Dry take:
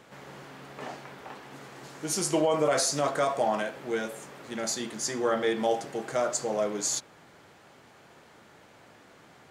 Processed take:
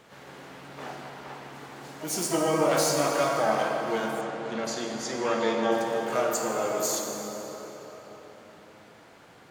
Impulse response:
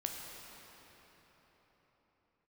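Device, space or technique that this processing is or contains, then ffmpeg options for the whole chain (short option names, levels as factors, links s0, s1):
shimmer-style reverb: -filter_complex "[0:a]asplit=2[s0][s1];[s1]asetrate=88200,aresample=44100,atempo=0.5,volume=0.355[s2];[s0][s2]amix=inputs=2:normalize=0[s3];[1:a]atrim=start_sample=2205[s4];[s3][s4]afir=irnorm=-1:irlink=0,asettb=1/sr,asplit=3[s5][s6][s7];[s5]atrim=end=4.214[s8];[s6]atrim=start=4.21:end=5.72,asetpts=PTS-STARTPTS,afade=t=in:d=0.004:c=qsin,afade=t=out:st=1.506:d=0.004:c=qsin,lowpass=5600[s9];[s7]atrim=start=5.716[s10];[s8][s9]acrossfade=d=0.004:c1=hsin:c2=qsin[s11];[s11][s10]acrossfade=d=0.004:c1=qsin:c2=hsin"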